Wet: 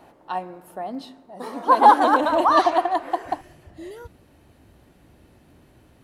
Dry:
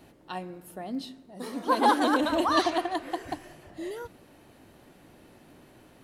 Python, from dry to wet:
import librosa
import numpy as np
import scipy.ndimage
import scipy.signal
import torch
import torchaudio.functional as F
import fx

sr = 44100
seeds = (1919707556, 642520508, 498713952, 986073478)

y = fx.peak_eq(x, sr, hz=fx.steps((0.0, 870.0), (3.41, 63.0)), db=13.5, octaves=1.8)
y = y * 10.0 ** (-2.5 / 20.0)